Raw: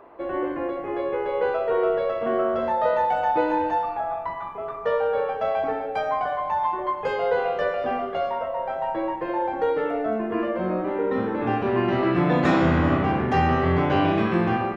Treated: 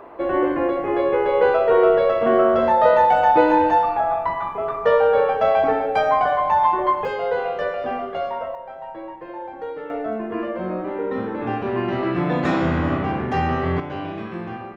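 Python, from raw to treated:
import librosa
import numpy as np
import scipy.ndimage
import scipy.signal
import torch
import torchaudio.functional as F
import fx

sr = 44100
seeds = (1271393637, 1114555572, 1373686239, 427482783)

y = fx.gain(x, sr, db=fx.steps((0.0, 7.0), (7.05, 0.0), (8.55, -8.0), (9.9, -1.0), (13.8, -9.0)))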